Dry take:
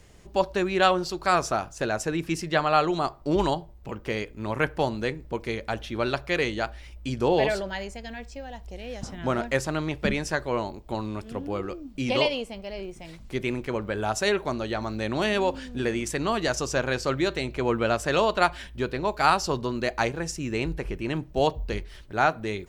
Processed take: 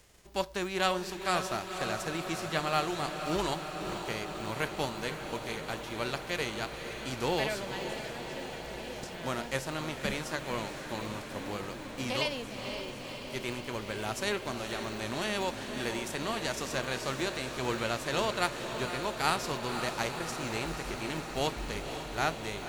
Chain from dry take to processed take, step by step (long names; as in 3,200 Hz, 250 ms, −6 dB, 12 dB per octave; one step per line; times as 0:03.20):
spectral envelope flattened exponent 0.6
feedback delay with all-pass diffusion 517 ms, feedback 77%, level −8 dB
level −8.5 dB